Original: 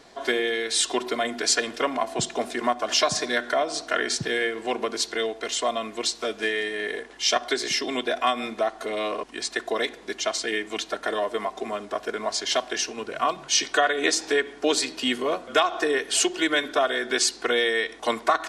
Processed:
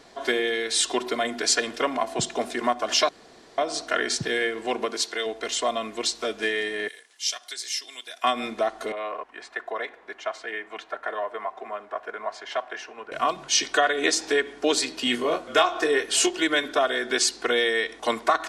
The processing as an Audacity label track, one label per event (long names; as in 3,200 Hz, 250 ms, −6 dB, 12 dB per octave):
3.090000	3.580000	fill with room tone
4.850000	5.250000	high-pass filter 160 Hz → 670 Hz 6 dB per octave
6.880000	8.240000	first difference
8.920000	13.120000	three-way crossover with the lows and the highs turned down lows −16 dB, under 550 Hz, highs −20 dB, over 2,200 Hz
15.040000	16.310000	double-tracking delay 25 ms −6 dB